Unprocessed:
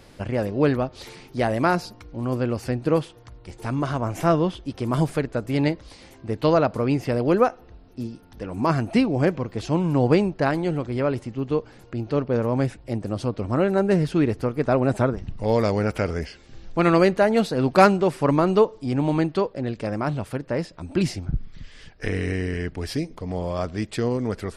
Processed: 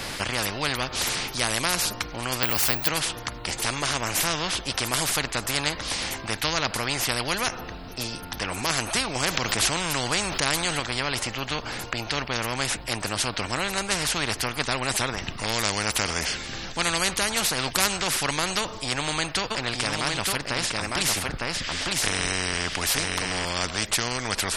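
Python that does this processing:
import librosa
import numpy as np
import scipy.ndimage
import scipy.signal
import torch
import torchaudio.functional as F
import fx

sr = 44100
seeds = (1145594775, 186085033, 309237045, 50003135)

y = fx.resample_bad(x, sr, factor=2, down='none', up='zero_stuff', at=(2.43, 2.88))
y = fx.env_flatten(y, sr, amount_pct=50, at=(9.15, 10.8))
y = fx.echo_single(y, sr, ms=906, db=-6.0, at=(19.5, 23.44), fade=0.02)
y = fx.peak_eq(y, sr, hz=390.0, db=-11.5, octaves=1.8)
y = fx.spectral_comp(y, sr, ratio=4.0)
y = F.gain(torch.from_numpy(y), 3.0).numpy()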